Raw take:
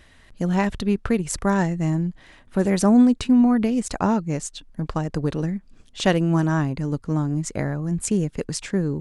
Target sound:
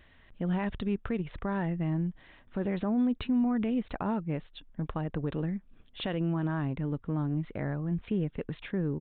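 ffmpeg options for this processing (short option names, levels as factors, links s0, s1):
-af "aresample=8000,aresample=44100,alimiter=limit=0.178:level=0:latency=1:release=55,volume=0.473"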